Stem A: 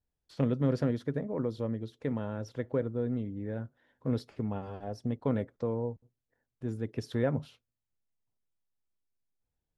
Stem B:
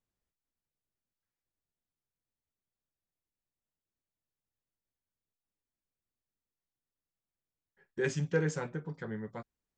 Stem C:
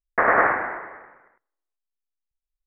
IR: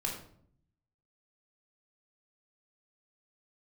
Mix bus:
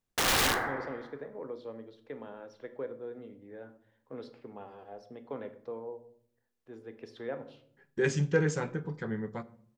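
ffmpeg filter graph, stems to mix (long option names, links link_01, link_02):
-filter_complex "[0:a]acrossover=split=350 5400:gain=0.112 1 0.141[link_01][link_02][link_03];[link_01][link_02][link_03]amix=inputs=3:normalize=0,adelay=50,volume=-8dB,asplit=2[link_04][link_05];[link_05]volume=-7dB[link_06];[1:a]volume=2dB,asplit=2[link_07][link_08];[link_08]volume=-15dB[link_09];[2:a]flanger=delay=8:depth=8.7:regen=-62:speed=1.9:shape=triangular,aeval=exprs='(mod(8.41*val(0)+1,2)-1)/8.41':channel_layout=same,volume=-4.5dB,asplit=2[link_10][link_11];[link_11]volume=-8.5dB[link_12];[3:a]atrim=start_sample=2205[link_13];[link_06][link_09][link_12]amix=inputs=3:normalize=0[link_14];[link_14][link_13]afir=irnorm=-1:irlink=0[link_15];[link_04][link_07][link_10][link_15]amix=inputs=4:normalize=0,equalizer=frequency=210:width_type=o:width=0.77:gain=2.5"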